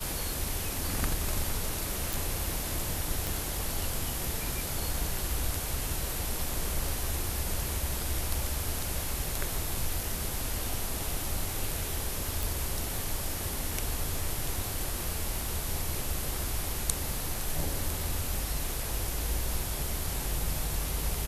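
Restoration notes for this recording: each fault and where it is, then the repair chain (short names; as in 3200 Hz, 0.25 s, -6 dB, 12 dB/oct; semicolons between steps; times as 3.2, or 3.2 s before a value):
2.13 pop
3.27 pop
12.43 pop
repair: de-click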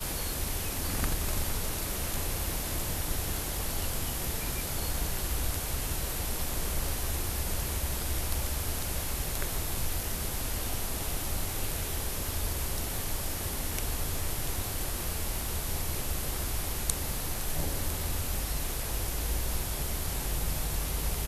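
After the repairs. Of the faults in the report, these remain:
none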